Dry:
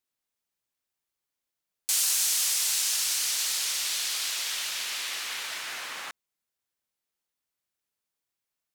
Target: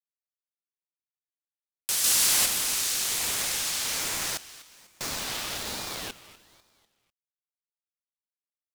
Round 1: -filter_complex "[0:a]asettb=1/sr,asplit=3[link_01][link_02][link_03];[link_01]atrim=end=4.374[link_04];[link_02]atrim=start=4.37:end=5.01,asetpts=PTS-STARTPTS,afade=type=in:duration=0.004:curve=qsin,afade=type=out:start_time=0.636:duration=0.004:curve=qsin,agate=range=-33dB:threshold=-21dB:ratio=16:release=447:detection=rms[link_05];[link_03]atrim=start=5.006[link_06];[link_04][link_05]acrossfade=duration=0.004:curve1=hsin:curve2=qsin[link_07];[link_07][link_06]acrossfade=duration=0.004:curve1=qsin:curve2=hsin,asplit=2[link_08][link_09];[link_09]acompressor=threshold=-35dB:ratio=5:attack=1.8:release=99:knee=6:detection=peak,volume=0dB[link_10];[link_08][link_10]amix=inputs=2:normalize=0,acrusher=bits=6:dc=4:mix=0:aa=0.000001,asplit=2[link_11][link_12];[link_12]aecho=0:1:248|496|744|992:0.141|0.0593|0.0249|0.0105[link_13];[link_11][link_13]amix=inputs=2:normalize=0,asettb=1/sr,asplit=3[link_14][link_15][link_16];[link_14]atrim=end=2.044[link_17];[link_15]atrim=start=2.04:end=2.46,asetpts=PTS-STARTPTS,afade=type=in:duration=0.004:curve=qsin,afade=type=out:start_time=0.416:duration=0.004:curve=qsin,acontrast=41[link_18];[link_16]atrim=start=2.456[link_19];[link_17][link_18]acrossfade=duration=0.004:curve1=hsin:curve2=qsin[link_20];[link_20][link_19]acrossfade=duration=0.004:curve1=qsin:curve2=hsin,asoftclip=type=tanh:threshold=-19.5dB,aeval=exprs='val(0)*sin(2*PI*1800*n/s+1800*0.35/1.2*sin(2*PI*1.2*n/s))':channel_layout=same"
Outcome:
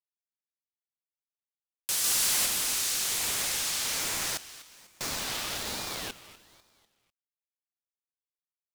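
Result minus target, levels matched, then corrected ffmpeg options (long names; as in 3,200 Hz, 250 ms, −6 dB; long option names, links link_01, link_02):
soft clipping: distortion +11 dB
-filter_complex "[0:a]asettb=1/sr,asplit=3[link_01][link_02][link_03];[link_01]atrim=end=4.374[link_04];[link_02]atrim=start=4.37:end=5.01,asetpts=PTS-STARTPTS,afade=type=in:duration=0.004:curve=qsin,afade=type=out:start_time=0.636:duration=0.004:curve=qsin,agate=range=-33dB:threshold=-21dB:ratio=16:release=447:detection=rms[link_05];[link_03]atrim=start=5.006[link_06];[link_04][link_05]acrossfade=duration=0.004:curve1=hsin:curve2=qsin[link_07];[link_07][link_06]acrossfade=duration=0.004:curve1=qsin:curve2=hsin,asplit=2[link_08][link_09];[link_09]acompressor=threshold=-35dB:ratio=5:attack=1.8:release=99:knee=6:detection=peak,volume=0dB[link_10];[link_08][link_10]amix=inputs=2:normalize=0,acrusher=bits=6:dc=4:mix=0:aa=0.000001,asplit=2[link_11][link_12];[link_12]aecho=0:1:248|496|744|992:0.141|0.0593|0.0249|0.0105[link_13];[link_11][link_13]amix=inputs=2:normalize=0,asettb=1/sr,asplit=3[link_14][link_15][link_16];[link_14]atrim=end=2.044[link_17];[link_15]atrim=start=2.04:end=2.46,asetpts=PTS-STARTPTS,afade=type=in:duration=0.004:curve=qsin,afade=type=out:start_time=0.416:duration=0.004:curve=qsin,acontrast=41[link_18];[link_16]atrim=start=2.456[link_19];[link_17][link_18]acrossfade=duration=0.004:curve1=hsin:curve2=qsin[link_20];[link_20][link_19]acrossfade=duration=0.004:curve1=qsin:curve2=hsin,asoftclip=type=tanh:threshold=-10dB,aeval=exprs='val(0)*sin(2*PI*1800*n/s+1800*0.35/1.2*sin(2*PI*1.2*n/s))':channel_layout=same"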